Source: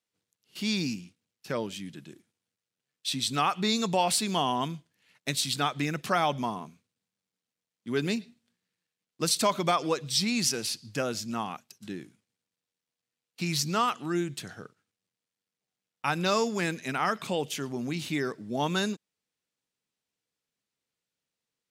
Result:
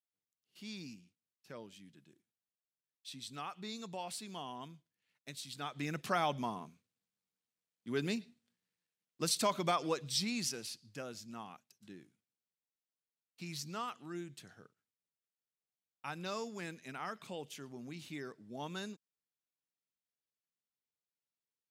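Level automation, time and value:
0:05.51 −17.5 dB
0:05.94 −7 dB
0:10.09 −7 dB
0:10.90 −14.5 dB

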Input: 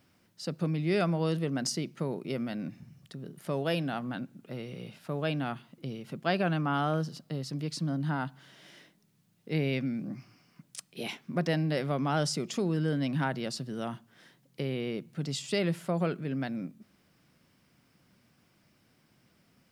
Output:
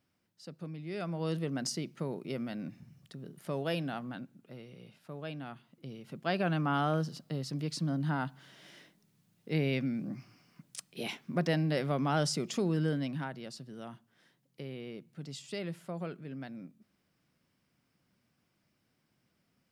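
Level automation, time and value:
0:00.92 −12 dB
0:01.32 −3.5 dB
0:03.87 −3.5 dB
0:04.69 −10 dB
0:05.51 −10 dB
0:06.61 −1 dB
0:12.86 −1 dB
0:13.31 −9.5 dB

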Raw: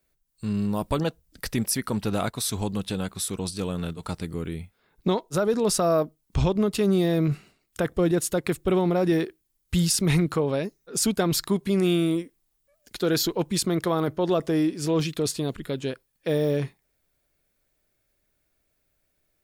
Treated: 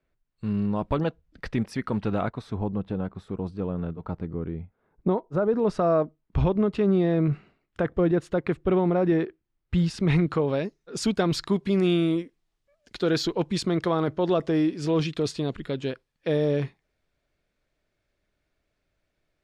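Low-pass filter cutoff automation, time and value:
0:02.06 2,400 Hz
0:02.61 1,100 Hz
0:05.25 1,100 Hz
0:05.90 2,100 Hz
0:09.76 2,100 Hz
0:10.60 4,400 Hz

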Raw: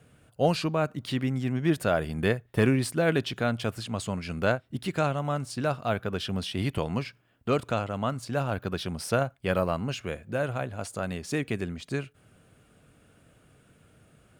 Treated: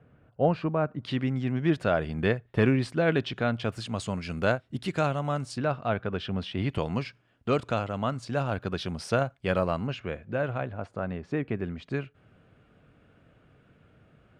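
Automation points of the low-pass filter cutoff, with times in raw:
1,600 Hz
from 0:01.03 4,000 Hz
from 0:03.72 7,900 Hz
from 0:05.58 3,000 Hz
from 0:06.70 6,300 Hz
from 0:09.87 2,900 Hz
from 0:10.73 1,700 Hz
from 0:11.64 2,900 Hz

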